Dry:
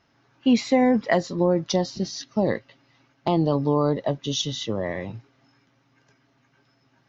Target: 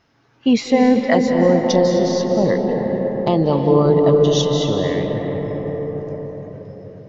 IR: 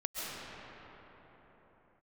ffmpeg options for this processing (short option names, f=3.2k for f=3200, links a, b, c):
-filter_complex "[0:a]asplit=2[a][b];[b]equalizer=f=460:w=5.7:g=9.5[c];[1:a]atrim=start_sample=2205,asetrate=29988,aresample=44100,lowshelf=f=84:g=9.5[d];[c][d]afir=irnorm=-1:irlink=0,volume=-6dB[e];[a][e]amix=inputs=2:normalize=0"